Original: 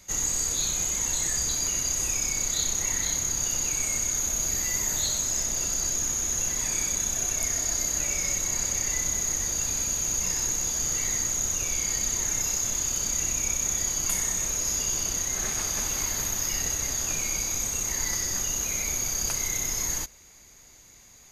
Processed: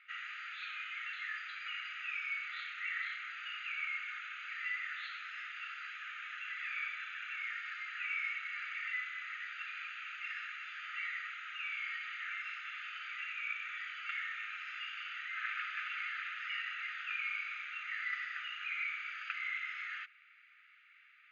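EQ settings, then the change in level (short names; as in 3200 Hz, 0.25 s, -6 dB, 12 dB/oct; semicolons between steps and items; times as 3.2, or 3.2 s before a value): brick-wall FIR high-pass 1200 Hz; elliptic low-pass 2700 Hz, stop band 70 dB; +2.5 dB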